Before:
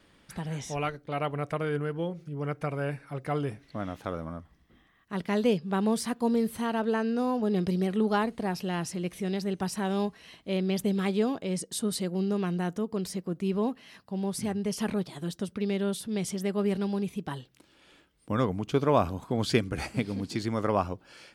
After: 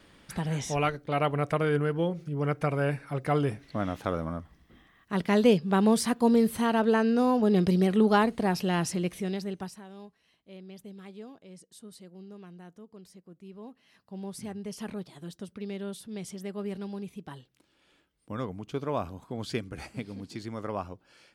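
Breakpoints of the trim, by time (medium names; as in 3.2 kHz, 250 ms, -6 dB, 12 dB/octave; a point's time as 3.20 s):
8.95 s +4 dB
9.63 s -6 dB
9.85 s -18 dB
13.57 s -18 dB
14.15 s -7.5 dB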